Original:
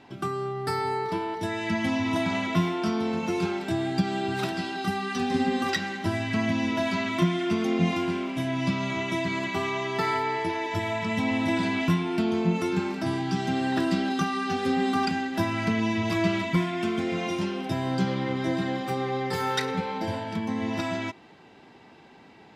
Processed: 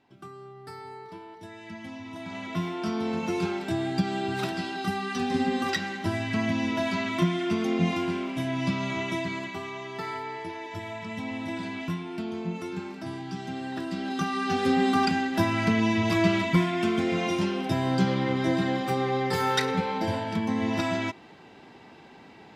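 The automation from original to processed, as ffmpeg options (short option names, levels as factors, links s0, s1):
-af "volume=2.82,afade=t=in:st=2.17:d=0.97:silence=0.223872,afade=t=out:st=9.06:d=0.55:silence=0.446684,afade=t=in:st=13.92:d=0.68:silence=0.316228"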